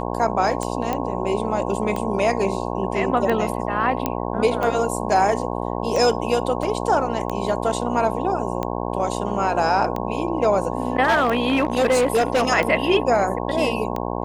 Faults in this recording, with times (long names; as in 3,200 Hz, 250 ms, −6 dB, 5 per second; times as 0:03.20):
mains buzz 60 Hz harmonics 18 −26 dBFS
scratch tick 45 rpm −13 dBFS
0:00.93: click −11 dBFS
0:04.06: click −7 dBFS
0:06.63: drop-out 3.2 ms
0:11.03–0:12.48: clipping −13.5 dBFS